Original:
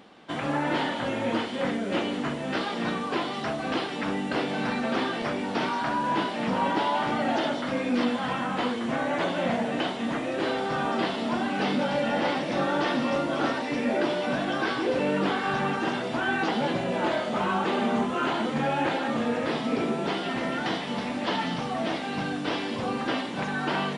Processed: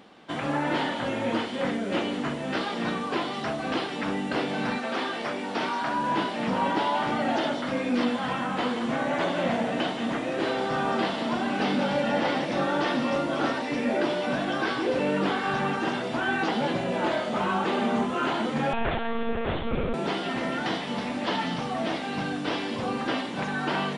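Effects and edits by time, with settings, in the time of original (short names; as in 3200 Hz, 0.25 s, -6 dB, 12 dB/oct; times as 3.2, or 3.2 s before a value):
4.77–5.95 HPF 490 Hz -> 190 Hz 6 dB/oct
8.45–12.46 echo 0.178 s -9.5 dB
18.73–19.94 monotone LPC vocoder at 8 kHz 230 Hz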